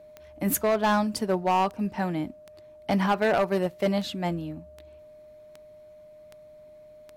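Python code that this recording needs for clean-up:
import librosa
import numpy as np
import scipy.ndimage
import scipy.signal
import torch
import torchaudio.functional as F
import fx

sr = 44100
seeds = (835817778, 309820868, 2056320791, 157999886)

y = fx.fix_declip(x, sr, threshold_db=-17.5)
y = fx.fix_declick_ar(y, sr, threshold=10.0)
y = fx.notch(y, sr, hz=610.0, q=30.0)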